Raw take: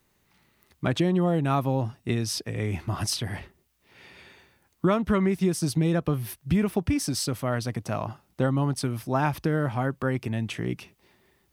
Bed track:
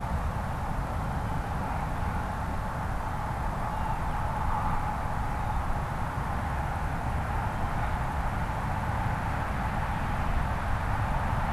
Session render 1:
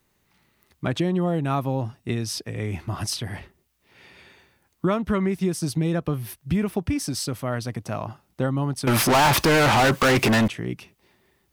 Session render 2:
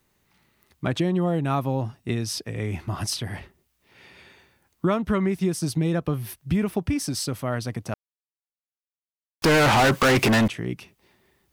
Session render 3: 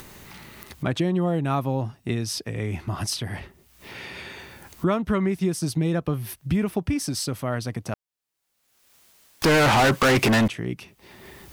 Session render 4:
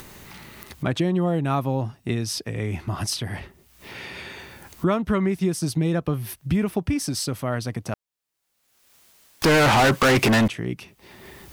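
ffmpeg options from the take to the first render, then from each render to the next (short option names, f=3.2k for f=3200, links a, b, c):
-filter_complex "[0:a]asettb=1/sr,asplit=3[a][b][c];[a]atrim=end=8.874[d];[b]atrim=start=8.87:end=10.48,asetpts=PTS-STARTPTS,afade=t=in:d=0.004:c=qsin,afade=t=out:st=1.606:d=0.004:c=qsin,asplit=2[e][f];[f]highpass=f=720:p=1,volume=39dB,asoftclip=type=tanh:threshold=-11dB[g];[e][g]amix=inputs=2:normalize=0,lowpass=f=7.9k:p=1,volume=-6dB[h];[c]atrim=start=10.476[i];[d][h]acrossfade=d=0.004:c1=hsin:c2=qsin[j];[j][i]acrossfade=d=0.004:c1=qsin:c2=hsin"
-filter_complex "[0:a]asplit=3[a][b][c];[a]atrim=end=7.94,asetpts=PTS-STARTPTS,afade=t=out:st=7.936:d=0.004:c=hsin[d];[b]atrim=start=7.94:end=9.42,asetpts=PTS-STARTPTS,volume=0[e];[c]atrim=start=9.42,asetpts=PTS-STARTPTS,afade=t=in:d=0.004:c=hsin[f];[d][e][f]concat=n=3:v=0:a=1"
-af "acompressor=mode=upward:threshold=-26dB:ratio=2.5"
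-af "volume=1dB"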